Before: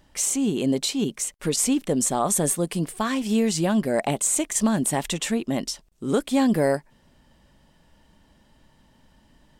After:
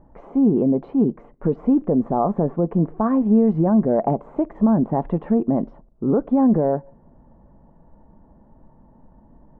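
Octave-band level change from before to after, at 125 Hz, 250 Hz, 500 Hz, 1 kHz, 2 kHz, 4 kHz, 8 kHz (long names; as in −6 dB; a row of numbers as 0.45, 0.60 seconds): +5.5 dB, +5.5 dB, +4.0 dB, +3.0 dB, below −10 dB, below −35 dB, below −40 dB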